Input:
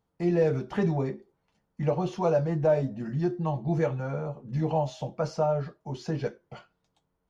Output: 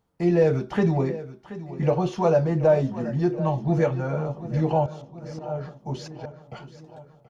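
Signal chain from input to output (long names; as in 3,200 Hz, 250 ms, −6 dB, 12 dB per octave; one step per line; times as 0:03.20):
0:04.86–0:06.42: volume swells 438 ms
repeating echo 729 ms, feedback 56%, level −15 dB
level +4.5 dB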